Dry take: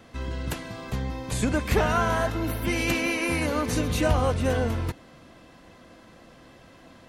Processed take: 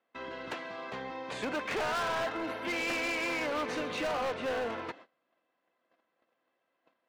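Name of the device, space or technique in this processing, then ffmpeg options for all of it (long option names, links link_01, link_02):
walkie-talkie: -af "highpass=460,lowpass=2900,asoftclip=type=hard:threshold=-30dB,agate=range=-25dB:threshold=-50dB:ratio=16:detection=peak"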